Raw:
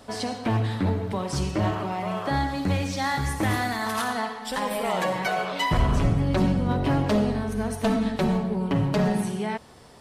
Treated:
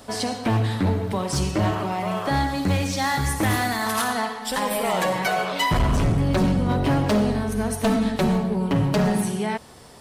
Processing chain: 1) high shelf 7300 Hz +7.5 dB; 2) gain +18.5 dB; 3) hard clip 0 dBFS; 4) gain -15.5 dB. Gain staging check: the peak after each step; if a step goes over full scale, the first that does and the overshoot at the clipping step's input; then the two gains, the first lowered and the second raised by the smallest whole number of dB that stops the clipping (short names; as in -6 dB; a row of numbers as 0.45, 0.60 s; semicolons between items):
-11.0, +7.5, 0.0, -15.5 dBFS; step 2, 7.5 dB; step 2 +10.5 dB, step 4 -7.5 dB